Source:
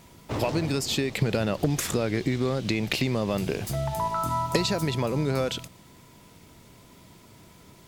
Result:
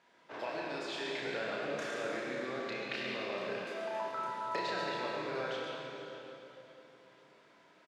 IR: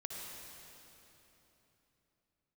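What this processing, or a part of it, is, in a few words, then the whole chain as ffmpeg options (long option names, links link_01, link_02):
station announcement: -filter_complex "[0:a]highpass=450,lowpass=3600,equalizer=frequency=1600:width_type=o:width=0.27:gain=10,aecho=1:1:32.07|137:0.708|0.355[link_01];[1:a]atrim=start_sample=2205[link_02];[link_01][link_02]afir=irnorm=-1:irlink=0,asettb=1/sr,asplit=3[link_03][link_04][link_05];[link_03]atrim=end=3.654[link_06];[link_04]atrim=start=3.65:end=4.08,asetpts=PTS-STARTPTS,afade=type=in:duration=0.004:curve=qsin,afade=type=out:start_time=0.426:duration=0.004:curve=qsin,highpass=frequency=160:width=0.5412,highpass=frequency=160:width=1.3066[link_07];[link_05]atrim=start=4.076[link_08];[link_06][link_07]acrossfade=duration=0.004:curve1=hsin:curve2=qsin[link_09];[link_09][link_08]acrossfade=duration=0.004:curve1=qsin:curve2=hsin,volume=-8dB"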